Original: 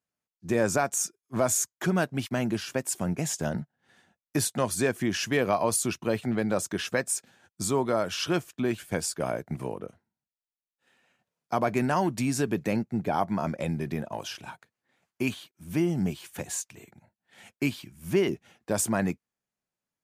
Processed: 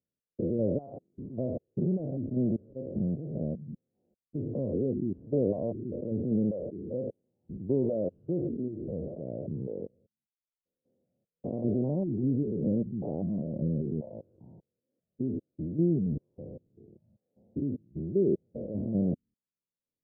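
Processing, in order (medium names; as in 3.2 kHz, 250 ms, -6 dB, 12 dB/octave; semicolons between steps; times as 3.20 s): spectrogram pixelated in time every 200 ms; elliptic low-pass 540 Hz, stop band 70 dB; reverb removal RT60 0.63 s; trim +4 dB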